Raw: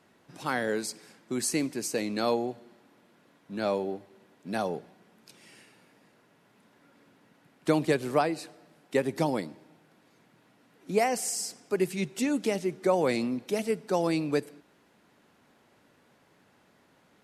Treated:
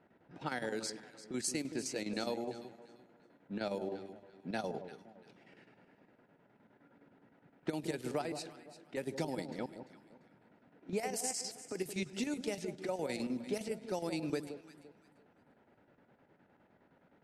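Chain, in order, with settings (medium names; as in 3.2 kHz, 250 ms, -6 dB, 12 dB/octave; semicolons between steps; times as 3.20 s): 9.32–11.33 s: chunks repeated in reverse 170 ms, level -6 dB; level-controlled noise filter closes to 1.5 kHz, open at -23 dBFS; treble shelf 3.9 kHz +6.5 dB; band-stop 1.1 kHz, Q 5.8; compression 6:1, threshold -31 dBFS, peak gain reduction 12 dB; square tremolo 9.7 Hz, depth 60%, duty 70%; echo whose repeats swap between lows and highs 172 ms, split 1 kHz, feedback 51%, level -9 dB; trim -2 dB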